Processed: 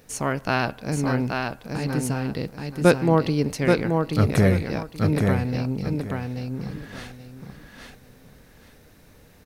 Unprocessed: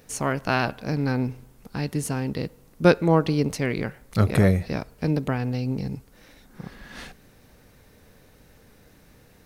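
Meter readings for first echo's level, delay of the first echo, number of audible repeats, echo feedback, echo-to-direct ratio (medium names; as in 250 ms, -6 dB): -4.0 dB, 829 ms, 3, 23%, -4.0 dB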